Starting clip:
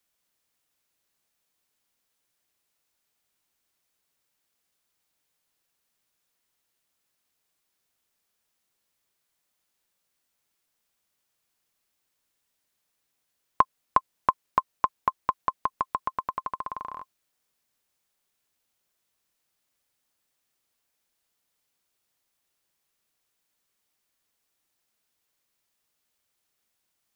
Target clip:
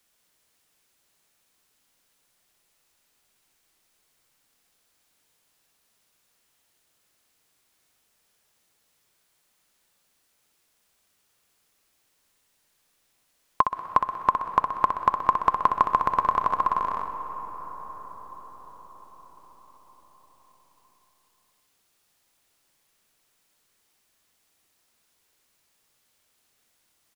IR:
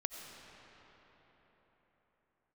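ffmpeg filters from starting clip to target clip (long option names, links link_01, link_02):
-filter_complex "[0:a]alimiter=limit=-12.5dB:level=0:latency=1:release=411,aecho=1:1:63|126|189|252|315|378:0.422|0.215|0.11|0.0559|0.0285|0.0145,asplit=2[link_01][link_02];[1:a]atrim=start_sample=2205,asetrate=23373,aresample=44100[link_03];[link_02][link_03]afir=irnorm=-1:irlink=0,volume=-6dB[link_04];[link_01][link_04]amix=inputs=2:normalize=0,volume=4dB"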